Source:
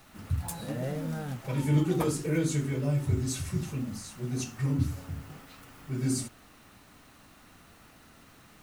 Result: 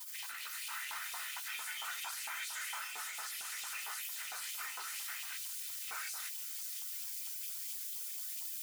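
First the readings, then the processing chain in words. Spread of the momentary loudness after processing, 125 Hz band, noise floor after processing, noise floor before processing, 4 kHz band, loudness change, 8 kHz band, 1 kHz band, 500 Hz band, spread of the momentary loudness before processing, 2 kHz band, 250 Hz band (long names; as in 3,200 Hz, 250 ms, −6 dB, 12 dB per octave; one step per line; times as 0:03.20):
1 LU, below −40 dB, −44 dBFS, −56 dBFS, +3.5 dB, −8.5 dB, 0.0 dB, −3.0 dB, −29.5 dB, 14 LU, +3.5 dB, below −40 dB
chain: camcorder AGC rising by 52 dB per second
gate on every frequency bin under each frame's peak −25 dB weak
high-shelf EQ 9,300 Hz +5 dB
brickwall limiter −52.5 dBFS, peak gain reduction 28.5 dB
auto-filter high-pass saw up 4.4 Hz 900–2,900 Hz
notch comb filter 560 Hz
on a send: delay with a high-pass on its return 526 ms, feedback 75%, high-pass 4,500 Hz, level −4 dB
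on the sum: level +18 dB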